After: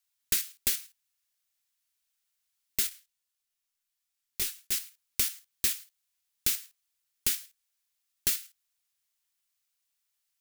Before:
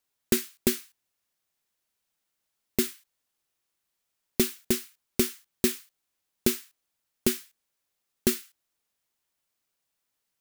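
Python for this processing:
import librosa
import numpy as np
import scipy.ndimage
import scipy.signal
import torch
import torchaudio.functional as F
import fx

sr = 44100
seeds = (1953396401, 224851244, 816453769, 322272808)

p1 = fx.tone_stack(x, sr, knobs='10-0-10')
p2 = fx.level_steps(p1, sr, step_db=19)
p3 = p1 + (p2 * librosa.db_to_amplitude(-1.0))
y = fx.detune_double(p3, sr, cents=24, at=(2.89, 4.72))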